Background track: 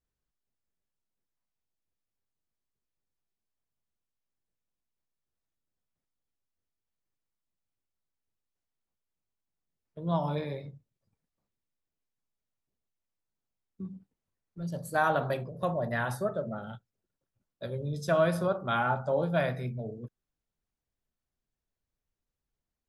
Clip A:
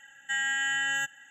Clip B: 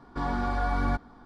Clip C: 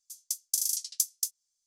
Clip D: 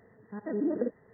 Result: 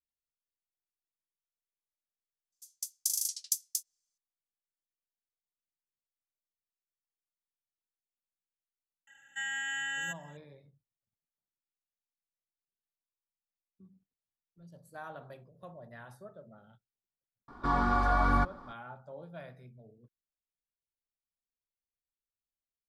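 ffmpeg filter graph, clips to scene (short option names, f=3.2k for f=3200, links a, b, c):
-filter_complex "[0:a]volume=-18.5dB[a];[3:a]dynaudnorm=f=240:g=3:m=8dB[b];[2:a]equalizer=f=1.2k:t=o:w=0.51:g=9[c];[b]atrim=end=1.66,asetpts=PTS-STARTPTS,volume=-8.5dB,afade=t=in:d=0.004:c=hsin,afade=t=out:st=1.656:d=0.004:c=hsin,adelay=2520[d];[1:a]atrim=end=1.3,asetpts=PTS-STARTPTS,volume=-7dB,afade=t=in:d=0.004:c=hsin,afade=t=out:st=1.296:d=0.004:c=hsin,adelay=9070[e];[c]atrim=end=1.25,asetpts=PTS-STARTPTS,volume=-1dB,afade=t=in:d=0.004:c=hsin,afade=t=out:st=1.246:d=0.004:c=hsin,adelay=770868S[f];[a][d][e][f]amix=inputs=4:normalize=0"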